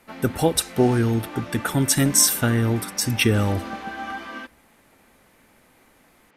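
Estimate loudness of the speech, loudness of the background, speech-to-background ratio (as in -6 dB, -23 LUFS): -21.0 LUFS, -35.5 LUFS, 14.5 dB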